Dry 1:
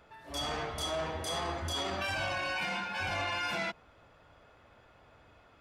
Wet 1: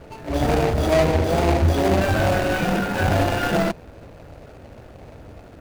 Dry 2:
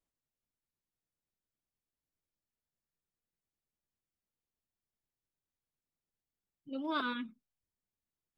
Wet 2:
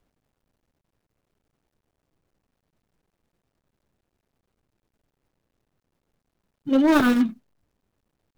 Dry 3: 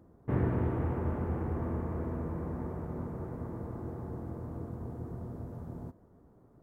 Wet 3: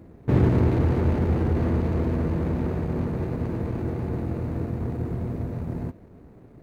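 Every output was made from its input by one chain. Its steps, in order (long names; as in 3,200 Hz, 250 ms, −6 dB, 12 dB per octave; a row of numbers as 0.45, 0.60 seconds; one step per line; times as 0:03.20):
running median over 41 samples
in parallel at −8 dB: hard clipping −34.5 dBFS
on the sum: normalise the peak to −9 dBFS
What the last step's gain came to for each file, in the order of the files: +19.0, +18.5, +9.5 decibels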